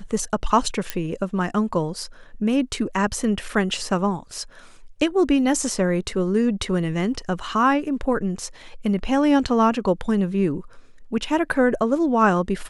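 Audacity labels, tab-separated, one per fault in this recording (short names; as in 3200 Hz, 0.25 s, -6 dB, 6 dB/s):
0.900000	0.900000	pop -9 dBFS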